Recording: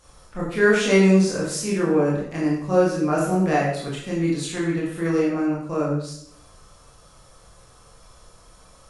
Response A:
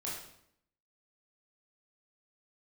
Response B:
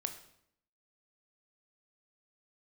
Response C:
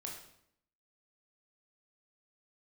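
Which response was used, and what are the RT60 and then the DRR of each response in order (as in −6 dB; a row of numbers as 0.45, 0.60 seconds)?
A; 0.70, 0.70, 0.70 seconds; −6.0, 6.5, −1.0 decibels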